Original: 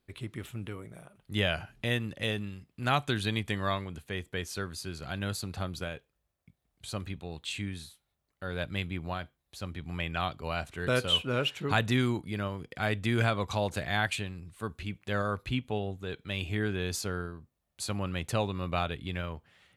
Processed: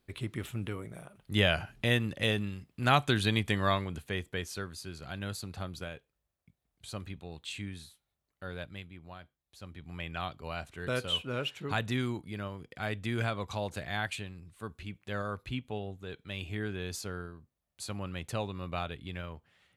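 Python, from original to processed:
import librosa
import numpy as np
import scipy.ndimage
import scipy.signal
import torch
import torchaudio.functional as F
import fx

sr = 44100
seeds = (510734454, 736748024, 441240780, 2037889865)

y = fx.gain(x, sr, db=fx.line((4.0, 2.5), (4.74, -4.0), (8.47, -4.0), (8.92, -14.0), (10.11, -5.0)))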